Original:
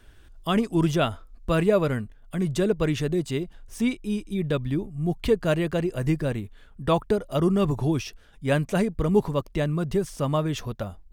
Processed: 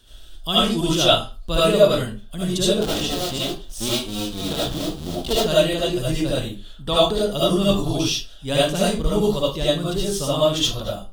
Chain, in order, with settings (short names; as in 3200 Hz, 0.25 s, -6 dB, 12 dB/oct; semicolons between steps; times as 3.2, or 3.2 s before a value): 2.76–5.33 cycle switcher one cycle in 2, muted; resonant high shelf 2700 Hz +7.5 dB, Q 3; reverb RT60 0.35 s, pre-delay 35 ms, DRR -8.5 dB; gain -3.5 dB